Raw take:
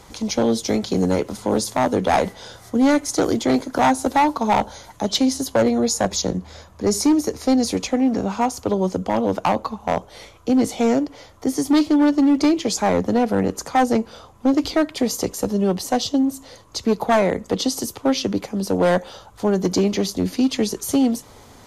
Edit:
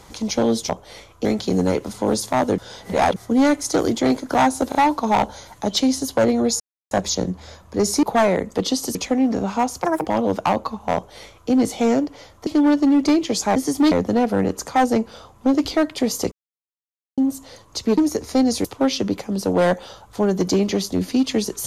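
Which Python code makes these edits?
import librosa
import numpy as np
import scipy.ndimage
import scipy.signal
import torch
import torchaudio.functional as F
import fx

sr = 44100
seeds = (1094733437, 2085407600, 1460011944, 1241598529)

y = fx.edit(x, sr, fx.reverse_span(start_s=2.02, length_s=0.58),
    fx.stutter(start_s=4.13, slice_s=0.03, count=3),
    fx.insert_silence(at_s=5.98, length_s=0.31),
    fx.swap(start_s=7.1, length_s=0.67, other_s=16.97, other_length_s=0.92),
    fx.speed_span(start_s=8.64, length_s=0.42, speed=1.71),
    fx.duplicate(start_s=9.94, length_s=0.56, to_s=0.69),
    fx.move(start_s=11.46, length_s=0.36, to_s=12.91),
    fx.silence(start_s=15.31, length_s=0.86), tone=tone)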